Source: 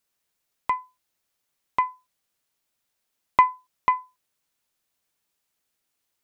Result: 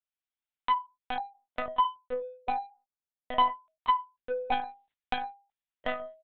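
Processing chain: 0.74–3.4 LPF 1300 Hz 24 dB/oct; gate -50 dBFS, range -21 dB; comb 7 ms, depth 44%; sample leveller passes 1; compressor 2:1, threshold -18 dBFS, peak gain reduction 5 dB; soft clip -15.5 dBFS, distortion -14 dB; echoes that change speed 0.242 s, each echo -4 st, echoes 3; monotone LPC vocoder at 8 kHz 250 Hz; mismatched tape noise reduction encoder only; gain -2 dB

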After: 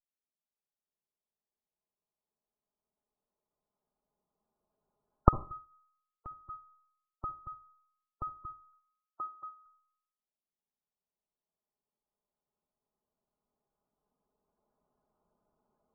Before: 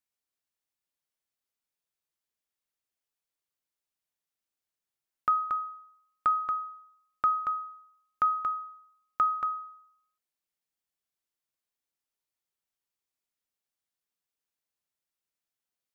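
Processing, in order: minimum comb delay 4.8 ms; recorder AGC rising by 5.1 dB/s; LPF 1000 Hz 24 dB/oct; spectral gate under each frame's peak -20 dB strong; 5.64–6.5 compressor 1.5:1, threshold -51 dBFS, peak gain reduction 7.5 dB; 8.73–9.66 HPF 460 Hz 12 dB/oct; reverb RT60 0.40 s, pre-delay 49 ms, DRR 14.5 dB; gain -5 dB

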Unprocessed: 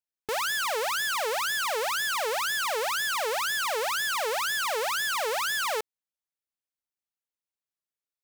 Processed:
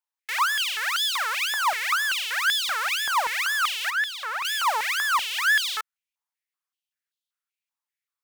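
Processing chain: 3.9–4.45 high shelf 2600 Hz -12 dB; stepped high-pass 5.2 Hz 930–3500 Hz

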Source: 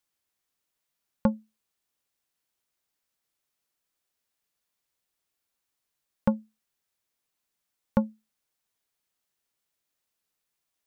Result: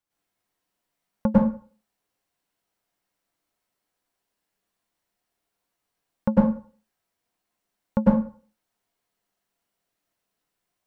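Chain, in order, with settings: high shelf 2100 Hz -9 dB; reverb RT60 0.40 s, pre-delay 92 ms, DRR -7.5 dB

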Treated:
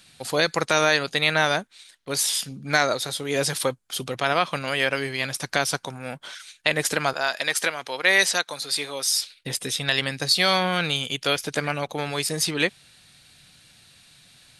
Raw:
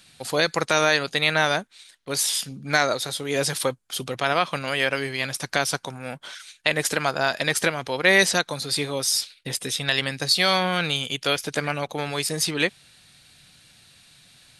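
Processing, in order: 7.13–9.23 HPF 730 Hz 6 dB/oct

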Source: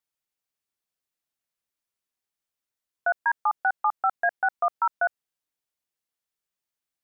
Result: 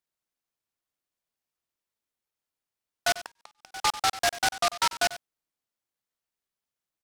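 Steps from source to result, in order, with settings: outdoor echo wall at 16 m, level -15 dB; 3.15–3.72 flipped gate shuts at -27 dBFS, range -37 dB; noise-modulated delay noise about 3300 Hz, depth 0.11 ms; gain -1 dB

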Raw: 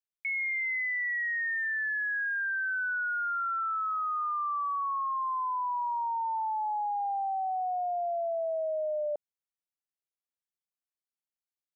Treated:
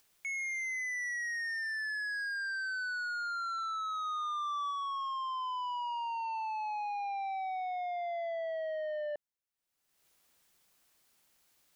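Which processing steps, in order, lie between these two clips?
upward compressor, threshold -50 dBFS; soft clip -34.5 dBFS, distortion -15 dB; 4.05–4.71 bell 960 Hz +8 dB 0.23 oct

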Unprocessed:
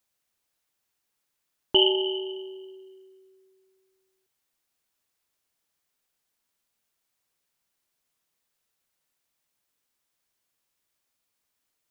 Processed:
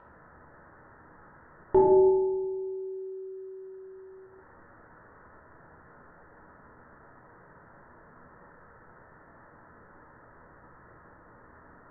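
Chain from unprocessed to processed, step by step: steep low-pass 1800 Hz 96 dB/oct; upward compressor, threshold -36 dBFS; reverb RT60 0.85 s, pre-delay 13 ms, DRR -2 dB

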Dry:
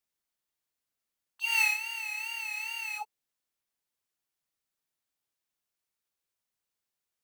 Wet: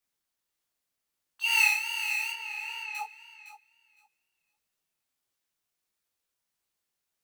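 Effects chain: 2.32–2.95 tape spacing loss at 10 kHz 21 dB; on a send: thinning echo 0.51 s, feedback 17%, high-pass 850 Hz, level -12.5 dB; on the sum: detuned doubles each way 52 cents; gain +7 dB

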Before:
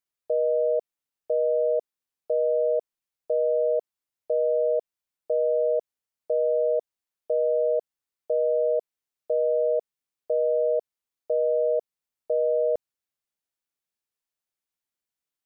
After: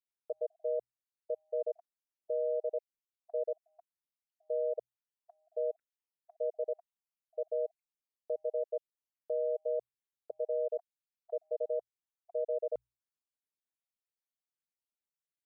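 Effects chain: random spectral dropouts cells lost 46%; notches 60/120 Hz; gain -9 dB

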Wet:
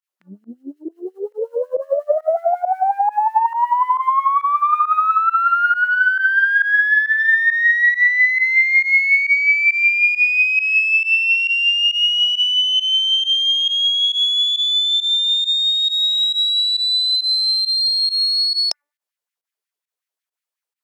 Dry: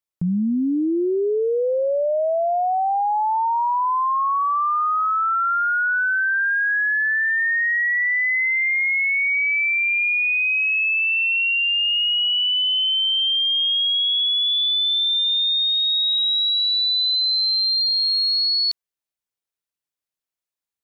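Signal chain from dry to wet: de-hum 292.2 Hz, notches 6; formant shift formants +3 st; added harmonics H 2 -17 dB, 7 -40 dB, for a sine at -6 dBFS; pump 136 bpm, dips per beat 1, -20 dB, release 71 ms; LFO high-pass sine 5.5 Hz 390–2100 Hz; gain +2 dB

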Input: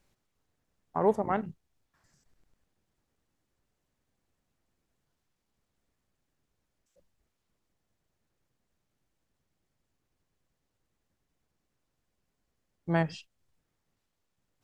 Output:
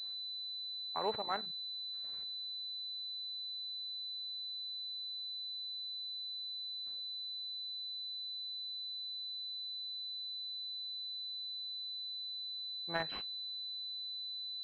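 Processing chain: differentiator; pulse-width modulation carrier 4000 Hz; gain +11.5 dB

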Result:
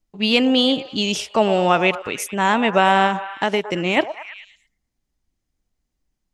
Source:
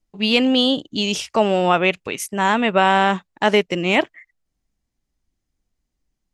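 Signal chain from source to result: delay with a stepping band-pass 0.11 s, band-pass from 690 Hz, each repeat 0.7 oct, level -9.5 dB; 3.06–3.97 compressor, threshold -16 dBFS, peak gain reduction 6 dB

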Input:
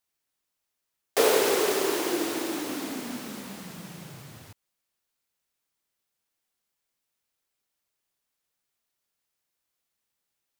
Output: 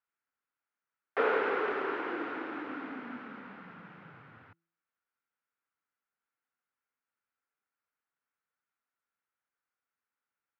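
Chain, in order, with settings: speaker cabinet 130–2300 Hz, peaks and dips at 140 Hz -6 dB, 200 Hz -5 dB, 360 Hz -6 dB, 620 Hz -6 dB, 1400 Hz +9 dB; de-hum 166.8 Hz, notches 2; gain -4.5 dB

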